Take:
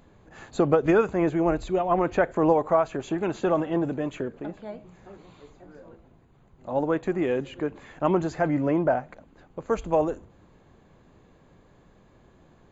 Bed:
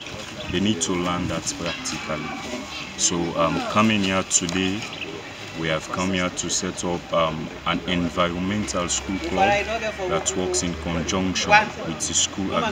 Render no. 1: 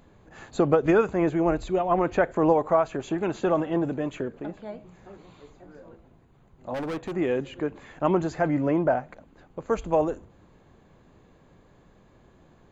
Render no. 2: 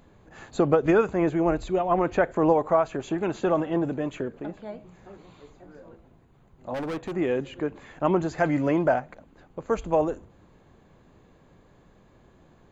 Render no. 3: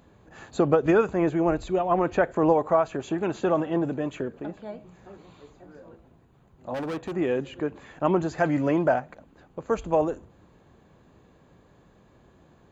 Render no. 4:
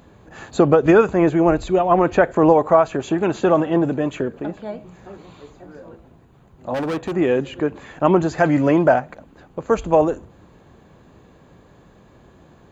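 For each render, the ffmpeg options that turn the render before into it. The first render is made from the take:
-filter_complex "[0:a]asettb=1/sr,asplit=3[a][b][c];[a]atrim=end=6.744[d];[b]atrim=start=6.74:end=7.15,asetpts=PTS-STARTPTS,afade=t=in:d=0.004:c=qsin,afade=t=out:st=0.406:d=0.004:c=qsin,asoftclip=type=hard:threshold=-28.5dB[e];[c]atrim=start=7.146[f];[d][e]acrossfade=d=0.004:c1=hsin:c2=qsin[g];[g][f]acrossfade=d=0.004:c1=qsin:c2=hsin"
-filter_complex "[0:a]asettb=1/sr,asplit=3[a][b][c];[a]atrim=end=8.384[d];[b]atrim=start=8.38:end=9,asetpts=PTS-STARTPTS,afade=t=in:d=0.004:c=qsin,afade=t=out:st=0.616:d=0.004:c=qsin,highshelf=f=2.2k:g=10[e];[c]atrim=start=8.996[f];[d][e]acrossfade=d=0.004:c1=hsin:c2=qsin[g];[g][f]acrossfade=d=0.004:c1=qsin:c2=hsin"
-af "highpass=40,bandreject=f=2.1k:w=21"
-af "volume=7.5dB,alimiter=limit=-2dB:level=0:latency=1"

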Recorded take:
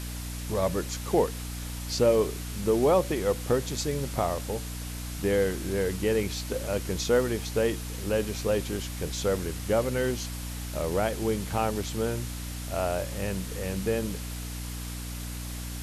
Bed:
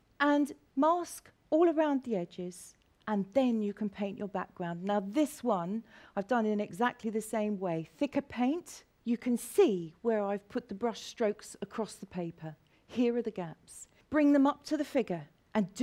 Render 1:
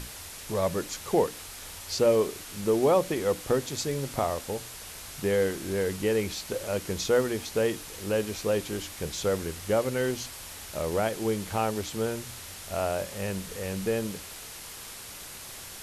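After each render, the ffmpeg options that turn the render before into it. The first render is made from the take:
-af "bandreject=f=60:t=h:w=6,bandreject=f=120:t=h:w=6,bandreject=f=180:t=h:w=6,bandreject=f=240:t=h:w=6,bandreject=f=300:t=h:w=6"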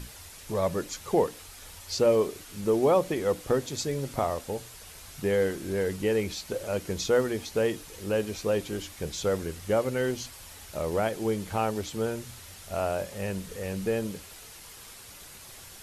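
-af "afftdn=nr=6:nf=-43"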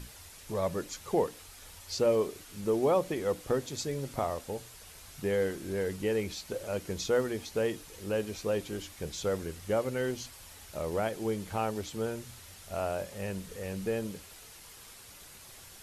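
-af "volume=-4dB"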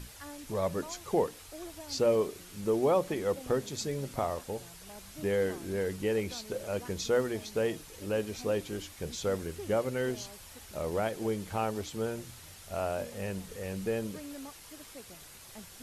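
-filter_complex "[1:a]volume=-19.5dB[a];[0:a][a]amix=inputs=2:normalize=0"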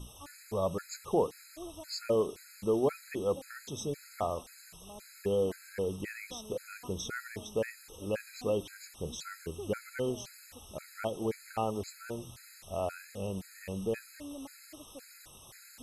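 -af "afftfilt=real='re*gt(sin(2*PI*1.9*pts/sr)*(1-2*mod(floor(b*sr/1024/1300),2)),0)':imag='im*gt(sin(2*PI*1.9*pts/sr)*(1-2*mod(floor(b*sr/1024/1300),2)),0)':win_size=1024:overlap=0.75"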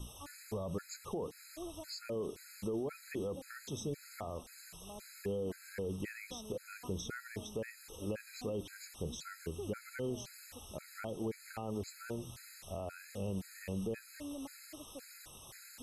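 -filter_complex "[0:a]alimiter=level_in=3.5dB:limit=-24dB:level=0:latency=1:release=31,volume=-3.5dB,acrossover=split=380[a][b];[b]acompressor=threshold=-47dB:ratio=2[c];[a][c]amix=inputs=2:normalize=0"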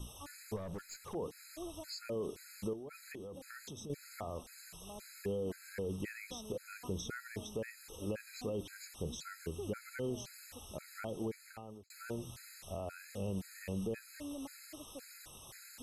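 -filter_complex "[0:a]asettb=1/sr,asplit=3[a][b][c];[a]atrim=end=0.564[d];[b]atrim=start=0.56:end=1.15,asetpts=PTS-STARTPTS,afade=t=in:d=0.004:c=qsin,afade=t=out:st=0.586:d=0.004:c=qsin,aeval=exprs='(tanh(89.1*val(0)+0.3)-tanh(0.3))/89.1':c=same[e];[c]atrim=start=1.146[f];[d][e]acrossfade=d=0.004:c1=hsin:c2=qsin[g];[g][f]acrossfade=d=0.004:c1=qsin:c2=hsin,asettb=1/sr,asplit=3[h][i][j];[h]atrim=end=2.734[k];[i]atrim=start=2.73:end=3.9,asetpts=PTS-STARTPTS,afade=t=in:d=0.004:c=qsin,afade=t=out:st=1.166:d=0.004:c=qsin,acompressor=threshold=-44dB:ratio=6:attack=3.2:release=140:knee=1:detection=peak[l];[j]atrim=start=3.896[m];[k][l]acrossfade=d=0.004:c1=hsin:c2=qsin[n];[n][m]acrossfade=d=0.004:c1=qsin:c2=hsin,asplit=2[o][p];[o]atrim=end=11.9,asetpts=PTS-STARTPTS,afade=t=out:st=11.21:d=0.69[q];[p]atrim=start=11.9,asetpts=PTS-STARTPTS,afade=t=in:d=0.004:c=hsin[r];[q][r]concat=n=2:v=0:a=1"

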